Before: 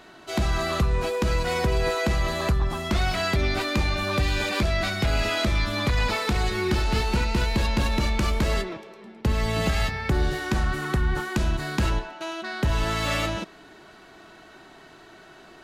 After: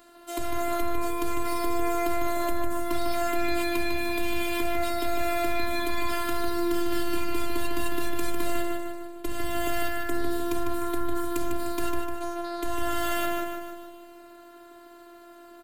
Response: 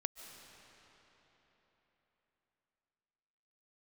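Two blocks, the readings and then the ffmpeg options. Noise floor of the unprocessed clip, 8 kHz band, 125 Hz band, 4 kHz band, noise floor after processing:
-49 dBFS, -1.0 dB, -18.0 dB, -7.5 dB, -49 dBFS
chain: -filter_complex "[0:a]afftfilt=real='hypot(re,im)*cos(PI*b)':imag='0':win_size=512:overlap=0.75,aexciter=amount=4.7:drive=4:freq=7900,acontrast=71,asplit=2[s0][s1];[s1]aecho=0:1:151|302|453|604|755|906|1057:0.531|0.287|0.155|0.0836|0.0451|0.0244|0.0132[s2];[s0][s2]amix=inputs=2:normalize=0,volume=0.355"

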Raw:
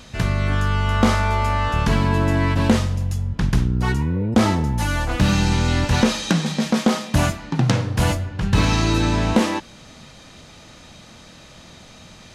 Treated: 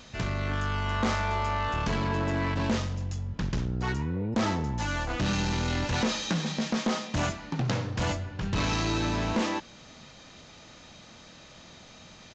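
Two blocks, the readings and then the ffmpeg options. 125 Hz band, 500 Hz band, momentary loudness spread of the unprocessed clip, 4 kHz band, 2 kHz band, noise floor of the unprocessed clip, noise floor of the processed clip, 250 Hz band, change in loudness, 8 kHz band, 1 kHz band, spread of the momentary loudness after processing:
-11.0 dB, -8.5 dB, 4 LU, -7.0 dB, -7.5 dB, -45 dBFS, -51 dBFS, -10.0 dB, -9.5 dB, -8.0 dB, -7.5 dB, 21 LU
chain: -af "aresample=16000,asoftclip=type=tanh:threshold=0.188,aresample=44100,lowshelf=f=170:g=-5,volume=0.562"

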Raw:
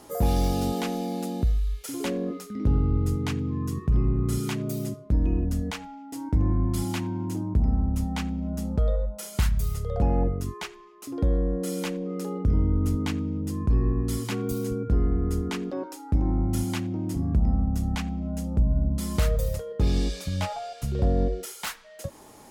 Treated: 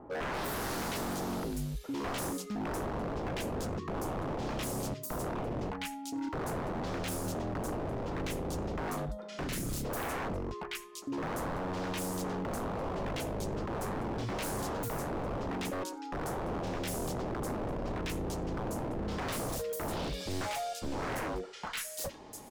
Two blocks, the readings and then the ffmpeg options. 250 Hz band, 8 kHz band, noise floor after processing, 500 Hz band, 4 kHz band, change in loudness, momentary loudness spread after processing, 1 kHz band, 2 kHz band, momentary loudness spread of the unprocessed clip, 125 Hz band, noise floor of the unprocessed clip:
-8.5 dB, -2.0 dB, -45 dBFS, -3.5 dB, -3.0 dB, -9.0 dB, 3 LU, +0.5 dB, +0.5 dB, 8 LU, -13.5 dB, -47 dBFS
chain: -filter_complex "[0:a]acrossover=split=1400|4600[s0][s1][s2];[s1]adelay=100[s3];[s2]adelay=340[s4];[s0][s3][s4]amix=inputs=3:normalize=0,aeval=exprs='0.0299*(abs(mod(val(0)/0.0299+3,4)-2)-1)':c=same"

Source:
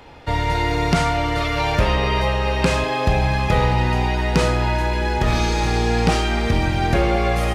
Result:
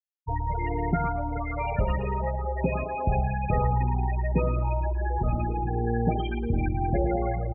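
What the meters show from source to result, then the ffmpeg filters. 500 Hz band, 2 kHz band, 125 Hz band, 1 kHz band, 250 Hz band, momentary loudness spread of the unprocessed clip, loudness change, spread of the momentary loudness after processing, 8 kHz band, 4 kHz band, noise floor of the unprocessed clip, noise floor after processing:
-8.5 dB, -15.0 dB, -6.5 dB, -8.0 dB, -7.5 dB, 2 LU, -8.0 dB, 4 LU, under -40 dB, under -25 dB, -23 dBFS, -32 dBFS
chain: -af "afftfilt=real='re*gte(hypot(re,im),0.282)':imag='im*gte(hypot(re,im),0.282)':win_size=1024:overlap=0.75,aecho=1:1:112|224|336:0.266|0.0851|0.0272,volume=0.473"

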